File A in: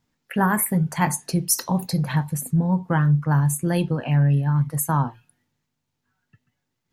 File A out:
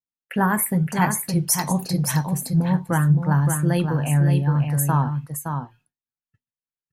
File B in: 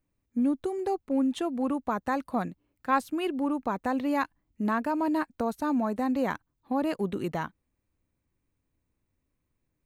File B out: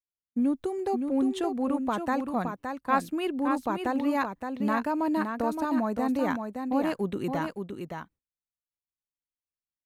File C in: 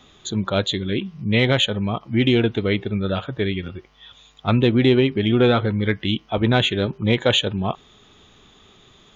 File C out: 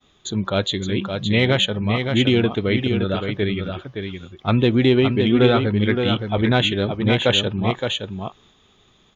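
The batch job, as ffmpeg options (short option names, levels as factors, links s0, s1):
-af "agate=range=0.0224:threshold=0.00562:ratio=3:detection=peak,aecho=1:1:568:0.501"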